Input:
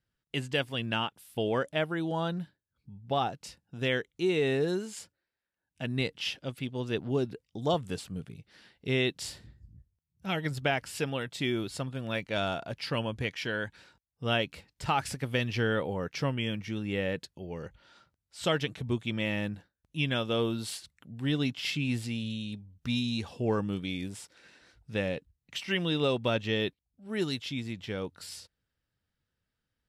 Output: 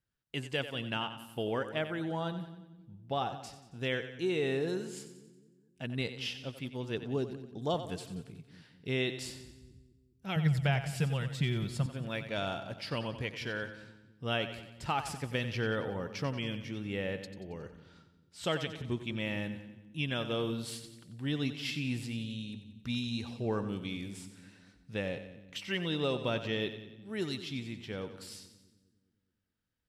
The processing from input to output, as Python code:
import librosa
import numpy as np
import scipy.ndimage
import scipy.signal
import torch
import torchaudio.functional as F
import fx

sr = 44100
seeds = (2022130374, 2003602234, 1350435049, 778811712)

y = fx.low_shelf_res(x, sr, hz=220.0, db=7.5, q=3.0, at=(10.36, 11.86))
y = fx.echo_split(y, sr, split_hz=310.0, low_ms=207, high_ms=91, feedback_pct=52, wet_db=-11.0)
y = y * librosa.db_to_amplitude(-4.5)